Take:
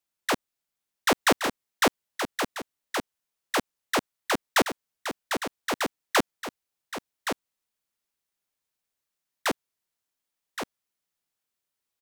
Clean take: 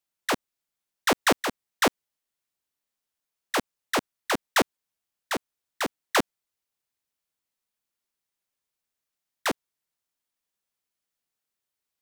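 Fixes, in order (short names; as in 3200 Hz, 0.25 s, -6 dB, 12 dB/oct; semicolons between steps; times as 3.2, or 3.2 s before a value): inverse comb 1.121 s -7.5 dB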